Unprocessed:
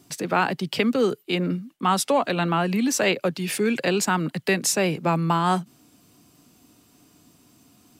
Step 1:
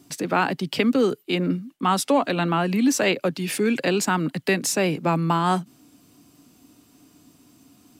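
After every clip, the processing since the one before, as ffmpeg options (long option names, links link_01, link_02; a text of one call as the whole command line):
ffmpeg -i in.wav -af "deesser=0.35,equalizer=frequency=280:width_type=o:width=0.34:gain=6" out.wav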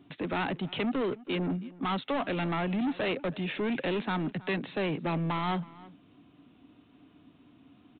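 ffmpeg -i in.wav -filter_complex "[0:a]aresample=8000,asoftclip=type=tanh:threshold=-23.5dB,aresample=44100,asplit=2[link_01][link_02];[link_02]adelay=320.7,volume=-20dB,highshelf=frequency=4000:gain=-7.22[link_03];[link_01][link_03]amix=inputs=2:normalize=0,volume=-3dB" out.wav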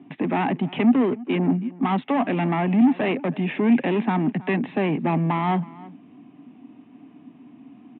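ffmpeg -i in.wav -af "highpass=frequency=130:width=0.5412,highpass=frequency=130:width=1.3066,equalizer=frequency=240:width_type=q:width=4:gain=8,equalizer=frequency=520:width_type=q:width=4:gain=-6,equalizer=frequency=790:width_type=q:width=4:gain=4,equalizer=frequency=1400:width_type=q:width=4:gain=-9,lowpass=frequency=2500:width=0.5412,lowpass=frequency=2500:width=1.3066,volume=8dB" out.wav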